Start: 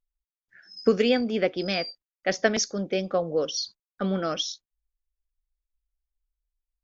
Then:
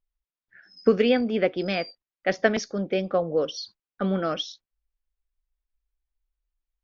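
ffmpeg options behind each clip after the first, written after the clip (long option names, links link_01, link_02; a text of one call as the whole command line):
ffmpeg -i in.wav -af "lowpass=3300,volume=1.5dB" out.wav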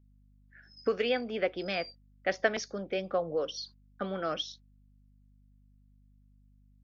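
ffmpeg -i in.wav -filter_complex "[0:a]acrossover=split=450[link_01][link_02];[link_01]acompressor=threshold=-34dB:ratio=6[link_03];[link_03][link_02]amix=inputs=2:normalize=0,aeval=exprs='val(0)+0.00158*(sin(2*PI*50*n/s)+sin(2*PI*2*50*n/s)/2+sin(2*PI*3*50*n/s)/3+sin(2*PI*4*50*n/s)/4+sin(2*PI*5*50*n/s)/5)':channel_layout=same,volume=-4.5dB" out.wav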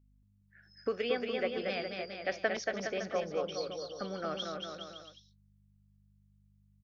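ffmpeg -i in.wav -af "aecho=1:1:230|414|561.2|679|773.2:0.631|0.398|0.251|0.158|0.1,volume=-4.5dB" out.wav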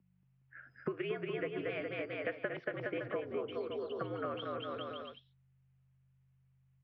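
ffmpeg -i in.wav -af "acompressor=threshold=-43dB:ratio=6,highpass=frequency=210:width_type=q:width=0.5412,highpass=frequency=210:width_type=q:width=1.307,lowpass=frequency=2900:width_type=q:width=0.5176,lowpass=frequency=2900:width_type=q:width=0.7071,lowpass=frequency=2900:width_type=q:width=1.932,afreqshift=-69,volume=8dB" out.wav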